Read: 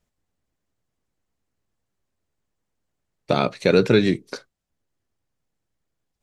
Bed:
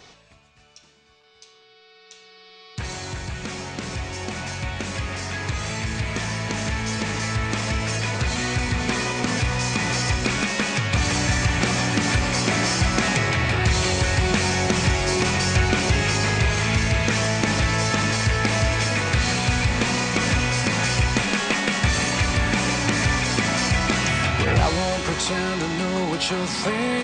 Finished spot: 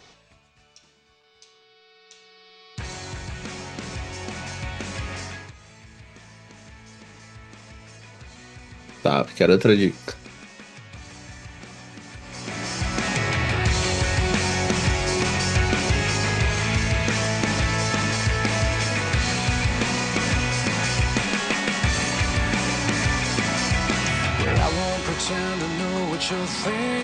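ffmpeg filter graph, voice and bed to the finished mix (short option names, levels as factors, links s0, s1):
-filter_complex "[0:a]adelay=5750,volume=1.06[s0];[1:a]volume=5.96,afade=t=out:st=5.2:d=0.33:silence=0.141254,afade=t=in:st=12.21:d=1.12:silence=0.11885[s1];[s0][s1]amix=inputs=2:normalize=0"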